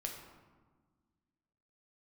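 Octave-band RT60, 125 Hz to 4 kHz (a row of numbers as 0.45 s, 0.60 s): 2.0 s, 2.2 s, 1.5 s, 1.4 s, 1.0 s, 0.75 s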